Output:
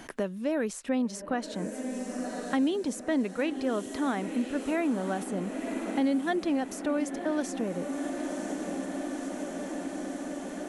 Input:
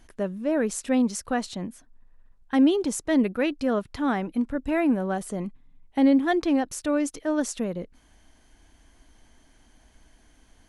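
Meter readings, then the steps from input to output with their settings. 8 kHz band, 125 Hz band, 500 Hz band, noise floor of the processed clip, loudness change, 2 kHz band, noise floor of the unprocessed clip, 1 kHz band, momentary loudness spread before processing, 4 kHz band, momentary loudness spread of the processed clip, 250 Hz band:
−5.0 dB, −4.0 dB, −3.5 dB, −41 dBFS, −6.0 dB, −3.0 dB, −59 dBFS, −3.0 dB, 13 LU, −3.5 dB, 7 LU, −4.5 dB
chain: low-shelf EQ 77 Hz −11.5 dB
on a send: feedback delay with all-pass diffusion 1,017 ms, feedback 70%, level −12 dB
on the sum: multiband upward and downward compressor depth 70%
level −4.5 dB

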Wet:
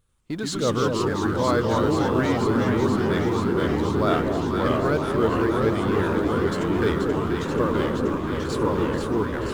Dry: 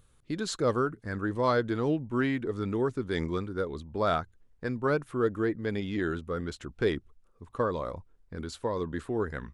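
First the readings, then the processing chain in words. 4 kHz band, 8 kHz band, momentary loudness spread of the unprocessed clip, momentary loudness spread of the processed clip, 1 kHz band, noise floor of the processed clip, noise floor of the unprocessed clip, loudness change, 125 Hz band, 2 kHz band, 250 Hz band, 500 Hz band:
+8.5 dB, can't be measured, 11 LU, 4 LU, +8.5 dB, −29 dBFS, −63 dBFS, +8.0 dB, +9.0 dB, +6.5 dB, +9.5 dB, +7.5 dB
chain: mu-law and A-law mismatch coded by mu
noise gate −48 dBFS, range −17 dB
delay that swaps between a low-pass and a high-pass 241 ms, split 880 Hz, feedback 90%, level −5 dB
delay with pitch and tempo change per echo 91 ms, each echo −2 semitones, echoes 3
level +2 dB

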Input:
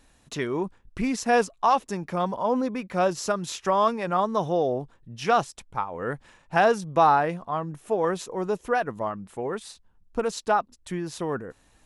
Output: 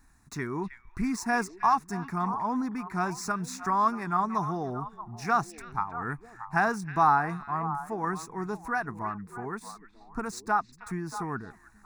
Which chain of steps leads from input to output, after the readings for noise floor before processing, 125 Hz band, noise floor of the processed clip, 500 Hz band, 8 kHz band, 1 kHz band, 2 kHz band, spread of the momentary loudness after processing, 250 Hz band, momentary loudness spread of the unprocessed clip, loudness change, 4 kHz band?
−61 dBFS, −1.0 dB, −57 dBFS, −11.5 dB, −3.5 dB, −2.5 dB, −1.0 dB, 12 LU, −2.5 dB, 12 LU, −4.0 dB, −9.0 dB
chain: running median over 3 samples
phaser with its sweep stopped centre 1,300 Hz, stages 4
echo through a band-pass that steps 315 ms, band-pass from 2,600 Hz, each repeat −1.4 octaves, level −8 dB

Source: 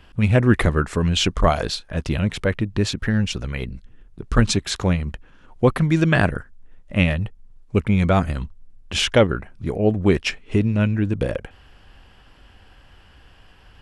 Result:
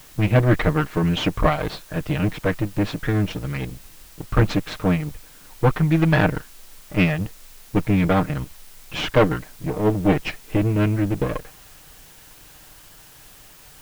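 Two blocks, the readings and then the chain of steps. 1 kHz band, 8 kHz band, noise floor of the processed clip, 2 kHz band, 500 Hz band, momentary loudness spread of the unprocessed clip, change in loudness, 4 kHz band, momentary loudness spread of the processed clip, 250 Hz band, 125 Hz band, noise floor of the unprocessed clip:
+0.5 dB, −8.5 dB, −47 dBFS, −1.5 dB, −1.0 dB, 11 LU, −1.0 dB, −6.0 dB, 12 LU, −0.5 dB, −0.5 dB, −50 dBFS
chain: lower of the sound and its delayed copy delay 6.5 ms
low-pass filter 3,000 Hz 12 dB per octave
bit-depth reduction 8 bits, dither triangular

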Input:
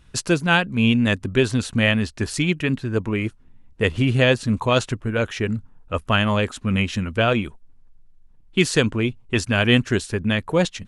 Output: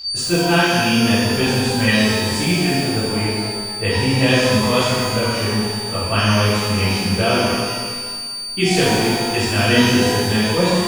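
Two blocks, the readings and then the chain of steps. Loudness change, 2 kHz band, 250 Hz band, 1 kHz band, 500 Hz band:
+4.0 dB, +3.0 dB, +3.5 dB, +6.5 dB, +4.0 dB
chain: steady tone 4,600 Hz −23 dBFS
reverb with rising layers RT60 1.7 s, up +12 semitones, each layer −8 dB, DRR −11.5 dB
level −9 dB

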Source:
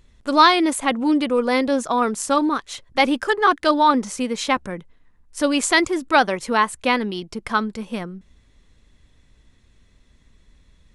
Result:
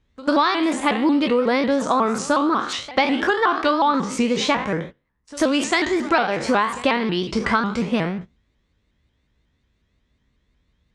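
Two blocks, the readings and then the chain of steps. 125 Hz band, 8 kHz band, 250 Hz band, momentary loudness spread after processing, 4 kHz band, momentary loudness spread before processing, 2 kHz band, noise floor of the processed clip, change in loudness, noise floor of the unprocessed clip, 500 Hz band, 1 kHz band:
+6.5 dB, −4.0 dB, +1.0 dB, 5 LU, −1.5 dB, 12 LU, −1.0 dB, −69 dBFS, −0.5 dB, −57 dBFS, +1.0 dB, −1.5 dB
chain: peak hold with a decay on every bin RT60 0.42 s
noise gate −39 dBFS, range −18 dB
high-pass filter 48 Hz
high-shelf EQ 8,700 Hz +6 dB
downward compressor 6 to 1, threshold −24 dBFS, peak gain reduction 16.5 dB
high-frequency loss of the air 120 metres
on a send: backwards echo 92 ms −19 dB
on the sum: pitch modulation by a square or saw wave saw up 5.5 Hz, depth 160 cents
level +8.5 dB

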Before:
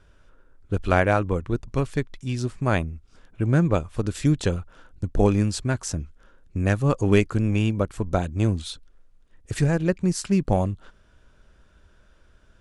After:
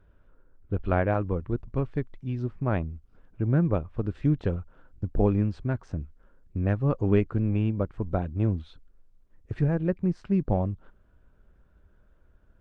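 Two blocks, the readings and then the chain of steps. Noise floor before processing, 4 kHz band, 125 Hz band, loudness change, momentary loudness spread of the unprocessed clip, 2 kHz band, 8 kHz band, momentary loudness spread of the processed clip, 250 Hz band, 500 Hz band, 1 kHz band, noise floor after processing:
−57 dBFS, below −15 dB, −3.0 dB, −4.0 dB, 13 LU, −10.0 dB, below −30 dB, 12 LU, −3.5 dB, −4.5 dB, −6.5 dB, −61 dBFS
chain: head-to-tape spacing loss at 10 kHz 41 dB
pitch vibrato 4.8 Hz 10 cents
level −2.5 dB
Opus 48 kbit/s 48,000 Hz

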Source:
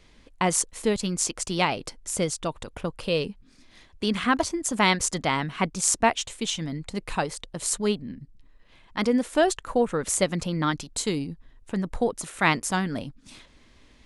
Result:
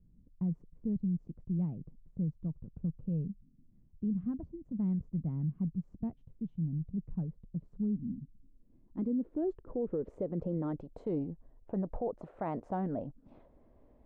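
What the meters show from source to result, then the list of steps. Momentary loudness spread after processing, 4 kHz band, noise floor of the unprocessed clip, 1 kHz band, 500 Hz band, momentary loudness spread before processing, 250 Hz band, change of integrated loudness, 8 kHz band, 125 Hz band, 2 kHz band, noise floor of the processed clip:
8 LU, below −40 dB, −56 dBFS, −19.0 dB, −13.0 dB, 11 LU, −6.0 dB, −10.5 dB, below −40 dB, −2.5 dB, below −30 dB, −64 dBFS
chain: low-pass filter sweep 170 Hz → 650 Hz, 0:07.39–0:11.26
brickwall limiter −20 dBFS, peak gain reduction 10.5 dB
level −6.5 dB

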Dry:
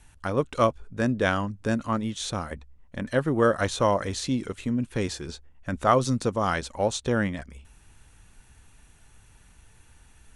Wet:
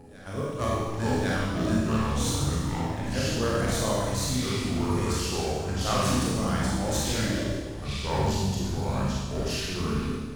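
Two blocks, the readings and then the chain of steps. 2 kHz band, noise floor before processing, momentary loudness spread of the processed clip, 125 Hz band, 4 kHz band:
−2.0 dB, −56 dBFS, 4 LU, +4.0 dB, +5.0 dB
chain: phase distortion by the signal itself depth 0.068 ms
first-order pre-emphasis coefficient 0.8
delay with pitch and tempo change per echo 235 ms, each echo −5 semitones, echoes 3
floating-point word with a short mantissa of 4 bits
low-shelf EQ 180 Hz +10.5 dB
noise gate −39 dBFS, range −11 dB
backwards echo 1,104 ms −19.5 dB
four-comb reverb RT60 1.4 s, combs from 28 ms, DRR −5.5 dB

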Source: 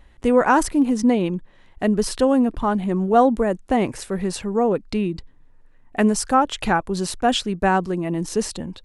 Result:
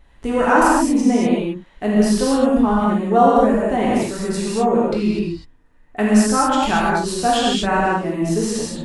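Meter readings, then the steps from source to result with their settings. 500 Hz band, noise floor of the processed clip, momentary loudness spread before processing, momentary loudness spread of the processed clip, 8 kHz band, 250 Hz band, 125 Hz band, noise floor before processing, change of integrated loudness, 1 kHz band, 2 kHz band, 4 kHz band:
+2.5 dB, −50 dBFS, 9 LU, 9 LU, +3.5 dB, +3.5 dB, +2.5 dB, −51 dBFS, +3.0 dB, +3.5 dB, +4.0 dB, +3.5 dB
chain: reverb whose tail is shaped and stops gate 270 ms flat, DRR −7 dB
level −4 dB

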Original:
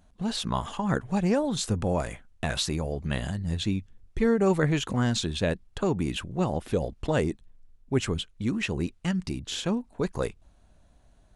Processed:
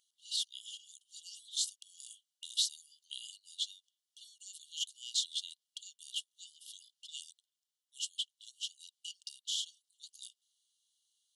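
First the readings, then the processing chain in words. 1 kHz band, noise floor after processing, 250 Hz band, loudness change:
below −40 dB, below −85 dBFS, below −40 dB, −10.5 dB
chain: linear-phase brick-wall high-pass 2,800 Hz
level −1.5 dB

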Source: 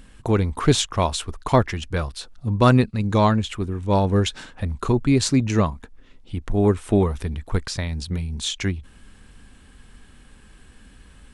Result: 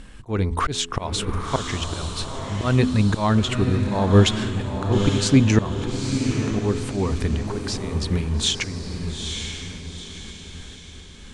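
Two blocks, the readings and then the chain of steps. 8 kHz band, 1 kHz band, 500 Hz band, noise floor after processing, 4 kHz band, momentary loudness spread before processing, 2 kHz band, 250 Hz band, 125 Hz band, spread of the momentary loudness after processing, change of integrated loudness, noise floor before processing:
+1.5 dB, −3.0 dB, −2.5 dB, −41 dBFS, +3.0 dB, 11 LU, +1.5 dB, +0.5 dB, +0.5 dB, 18 LU, −0.5 dB, −50 dBFS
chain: low-pass filter 9,300 Hz 12 dB per octave
hum removal 84.41 Hz, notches 5
volume swells 290 ms
feedback delay with all-pass diffusion 895 ms, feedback 44%, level −5.5 dB
level +5 dB

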